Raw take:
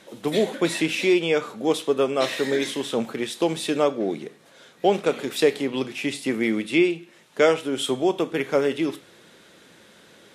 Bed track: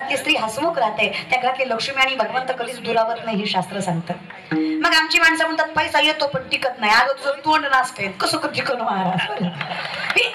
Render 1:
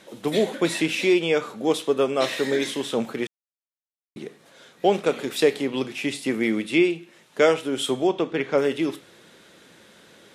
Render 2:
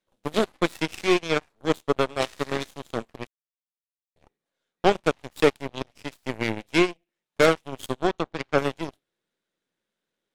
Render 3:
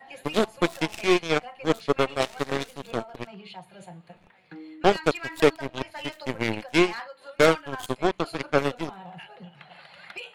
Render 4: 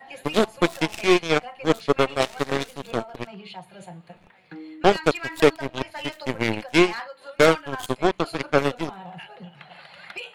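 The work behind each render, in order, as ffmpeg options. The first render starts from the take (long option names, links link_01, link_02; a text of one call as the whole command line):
ffmpeg -i in.wav -filter_complex "[0:a]asettb=1/sr,asplit=3[link_01][link_02][link_03];[link_01]atrim=end=8.074[link_04];[link_02]atrim=start=8.07:end=8.58,asetpts=PTS-STARTPTS,afade=type=in:duration=0.004:curve=qsin,afade=type=out:start_time=0.506:duration=0.004:curve=qsin,lowpass=5100[link_05];[link_03]atrim=start=8.576[link_06];[link_04][link_05]acrossfade=duration=0.004:curve1=hsin:curve2=qsin[link_07];[link_07][link_06]acrossfade=duration=0.004:curve1=qsin:curve2=hsin,asplit=3[link_08][link_09][link_10];[link_08]atrim=end=3.27,asetpts=PTS-STARTPTS,afade=type=out:start_time=3.266:duration=0.004:curve=hsin[link_11];[link_09]atrim=start=3.27:end=4.16,asetpts=PTS-STARTPTS,volume=0[link_12];[link_10]atrim=start=4.16,asetpts=PTS-STARTPTS,afade=type=in:duration=0.004:curve=hsin[link_13];[link_11][link_12][link_13]concat=n=3:v=0:a=1" out.wav
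ffmpeg -i in.wav -af "aeval=exprs='0.531*(cos(1*acos(clip(val(0)/0.531,-1,1)))-cos(1*PI/2))+0.00596*(cos(3*acos(clip(val(0)/0.531,-1,1)))-cos(3*PI/2))+0.0531*(cos(4*acos(clip(val(0)/0.531,-1,1)))-cos(4*PI/2))+0.075*(cos(7*acos(clip(val(0)/0.531,-1,1)))-cos(7*PI/2))':channel_layout=same" out.wav
ffmpeg -i in.wav -i bed.wav -filter_complex "[1:a]volume=-22dB[link_01];[0:a][link_01]amix=inputs=2:normalize=0" out.wav
ffmpeg -i in.wav -af "volume=3dB,alimiter=limit=-3dB:level=0:latency=1" out.wav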